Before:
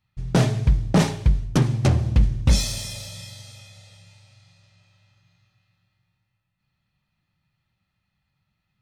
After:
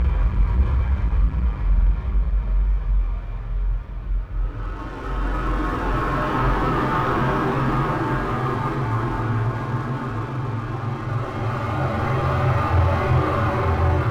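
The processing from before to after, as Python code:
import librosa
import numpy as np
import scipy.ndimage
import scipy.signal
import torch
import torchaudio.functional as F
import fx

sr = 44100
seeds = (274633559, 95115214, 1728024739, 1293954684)

p1 = fx.tracing_dist(x, sr, depth_ms=0.11)
p2 = fx.peak_eq(p1, sr, hz=1200.0, db=11.0, octaves=0.79)
p3 = fx.paulstretch(p2, sr, seeds[0], factor=13.0, window_s=0.25, from_s=1.25)
p4 = scipy.signal.sosfilt(scipy.signal.butter(2, 2100.0, 'lowpass', fs=sr, output='sos'), p3)
p5 = fx.peak_eq(p4, sr, hz=170.0, db=-13.5, octaves=0.96)
p6 = p5 + fx.echo_swell(p5, sr, ms=86, loudest=8, wet_db=-18, dry=0)
p7 = fx.stretch_vocoder_free(p6, sr, factor=1.6)
p8 = (np.mod(10.0 ** (70.0 / 20.0) * p7 + 1.0, 2.0) - 1.0) / 10.0 ** (70.0 / 20.0)
p9 = p7 + (p8 * 10.0 ** (-10.0 / 20.0))
p10 = fx.leveller(p9, sr, passes=2)
p11 = fx.doubler(p10, sr, ms=46.0, db=-3.0)
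y = p11 * 10.0 ** (-4.0 / 20.0)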